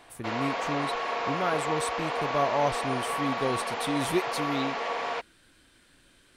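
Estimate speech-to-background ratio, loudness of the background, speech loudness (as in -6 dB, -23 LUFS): -1.0 dB, -31.0 LUFS, -32.0 LUFS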